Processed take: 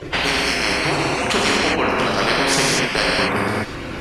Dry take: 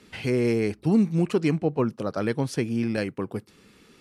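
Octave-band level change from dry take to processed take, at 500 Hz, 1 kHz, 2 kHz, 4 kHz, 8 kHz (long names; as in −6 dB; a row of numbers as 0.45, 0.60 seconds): +5.0, +17.0, +18.5, +23.0, +21.0 decibels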